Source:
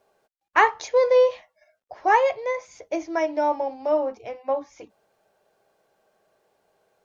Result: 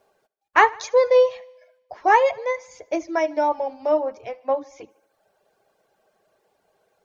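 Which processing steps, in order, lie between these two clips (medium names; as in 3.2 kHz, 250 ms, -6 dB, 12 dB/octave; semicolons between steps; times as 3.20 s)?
reverb removal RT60 0.71 s; on a send: thinning echo 75 ms, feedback 61%, high-pass 160 Hz, level -23 dB; on the sum: trim +2.5 dB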